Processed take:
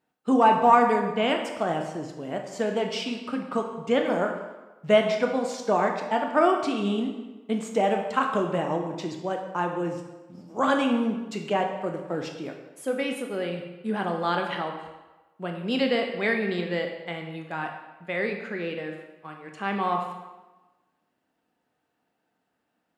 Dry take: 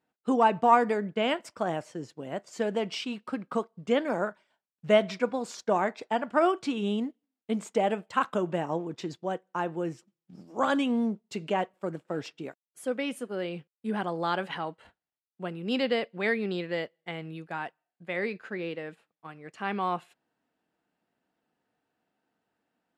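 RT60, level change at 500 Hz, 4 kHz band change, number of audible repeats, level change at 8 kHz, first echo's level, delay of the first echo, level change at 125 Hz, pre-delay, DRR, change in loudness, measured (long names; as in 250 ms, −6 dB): 1.1 s, +3.5 dB, +3.5 dB, no echo audible, +3.5 dB, no echo audible, no echo audible, +3.5 dB, 16 ms, 3.0 dB, +3.5 dB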